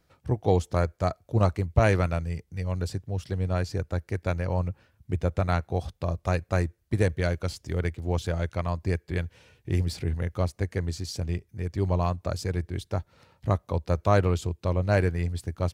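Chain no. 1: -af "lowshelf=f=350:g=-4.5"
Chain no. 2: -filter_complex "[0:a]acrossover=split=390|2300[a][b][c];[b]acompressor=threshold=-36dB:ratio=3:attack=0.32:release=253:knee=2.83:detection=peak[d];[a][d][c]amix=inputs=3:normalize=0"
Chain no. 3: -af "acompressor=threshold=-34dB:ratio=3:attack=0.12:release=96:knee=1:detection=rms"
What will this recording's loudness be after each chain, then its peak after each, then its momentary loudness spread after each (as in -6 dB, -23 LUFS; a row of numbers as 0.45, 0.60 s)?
-31.0, -30.0, -40.0 LUFS; -9.5, -8.5, -25.5 dBFS; 10, 8, 5 LU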